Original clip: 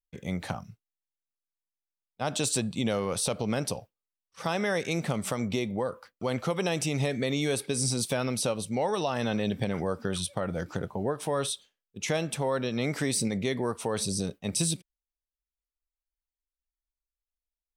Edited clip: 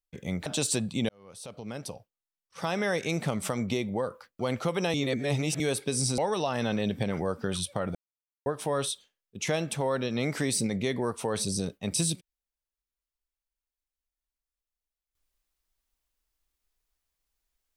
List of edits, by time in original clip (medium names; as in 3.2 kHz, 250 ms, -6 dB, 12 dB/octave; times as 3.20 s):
0.46–2.28 s: delete
2.91–4.70 s: fade in
6.76–7.42 s: reverse
8.00–8.79 s: delete
10.56–11.07 s: mute